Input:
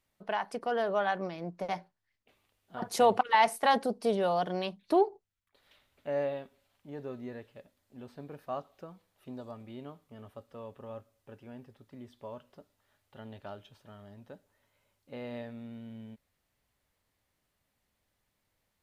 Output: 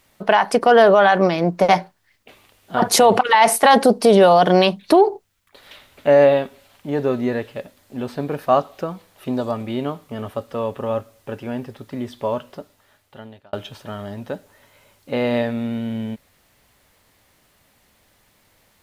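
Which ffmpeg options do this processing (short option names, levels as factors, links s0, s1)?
-filter_complex "[0:a]asplit=2[s0][s1];[s0]atrim=end=13.53,asetpts=PTS-STARTPTS,afade=t=out:st=12.36:d=1.17[s2];[s1]atrim=start=13.53,asetpts=PTS-STARTPTS,afade=t=in:d=0.004:c=hsin[s3];[s2][s3]concat=n=2:v=0:a=1,lowshelf=f=130:g=-5,alimiter=level_in=15.8:limit=0.891:release=50:level=0:latency=1,volume=0.708"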